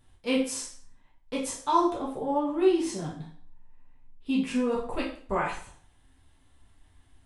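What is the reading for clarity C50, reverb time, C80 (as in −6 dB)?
6.5 dB, 0.50 s, 10.5 dB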